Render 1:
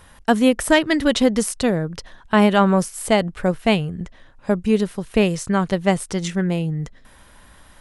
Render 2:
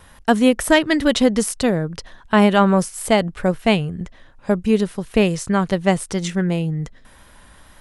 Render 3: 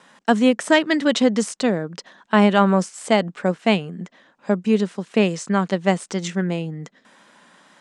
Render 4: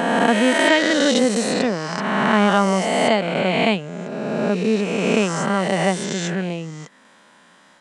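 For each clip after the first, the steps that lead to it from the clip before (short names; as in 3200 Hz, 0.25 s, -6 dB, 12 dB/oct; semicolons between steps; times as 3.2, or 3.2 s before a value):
wow and flutter 18 cents; gain +1 dB
elliptic band-pass 190–7800 Hz, stop band 40 dB; gain -1 dB
spectral swells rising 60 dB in 2.36 s; gain -3 dB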